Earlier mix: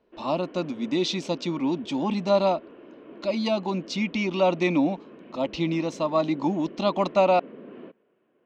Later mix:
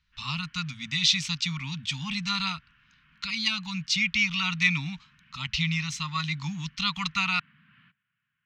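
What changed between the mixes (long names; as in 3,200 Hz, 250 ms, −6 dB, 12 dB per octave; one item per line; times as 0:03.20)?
speech +9.0 dB
master: add elliptic band-stop filter 140–1,500 Hz, stop band 80 dB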